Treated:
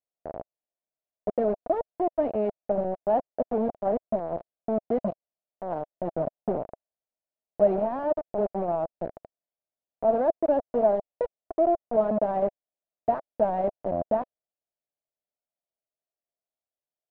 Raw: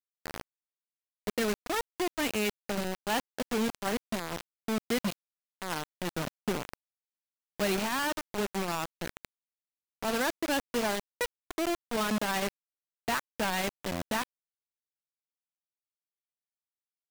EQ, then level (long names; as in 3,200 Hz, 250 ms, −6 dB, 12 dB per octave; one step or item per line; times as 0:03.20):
low-pass with resonance 650 Hz, resonance Q 5.4
0.0 dB